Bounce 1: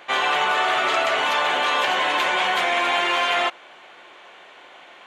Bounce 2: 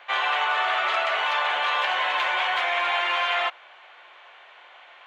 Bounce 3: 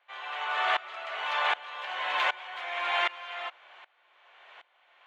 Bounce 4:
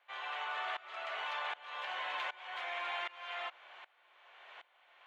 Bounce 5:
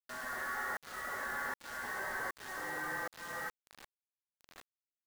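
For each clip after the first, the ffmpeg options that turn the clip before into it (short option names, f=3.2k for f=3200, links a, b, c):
-filter_complex "[0:a]highpass=180,acrossover=split=560 4400:gain=0.1 1 0.178[a][b][c];[a][b][c]amix=inputs=3:normalize=0,volume=-2dB"
-af "aeval=exprs='val(0)*pow(10,-22*if(lt(mod(-1.3*n/s,1),2*abs(-1.3)/1000),1-mod(-1.3*n/s,1)/(2*abs(-1.3)/1000),(mod(-1.3*n/s,1)-2*abs(-1.3)/1000)/(1-2*abs(-1.3)/1000))/20)':c=same"
-af "acompressor=threshold=-35dB:ratio=5,volume=-2dB"
-af "lowpass=f=2.2k:t=q:w=0.5098,lowpass=f=2.2k:t=q:w=0.6013,lowpass=f=2.2k:t=q:w=0.9,lowpass=f=2.2k:t=q:w=2.563,afreqshift=-2600,acrusher=bits=7:mix=0:aa=0.000001,volume=1dB"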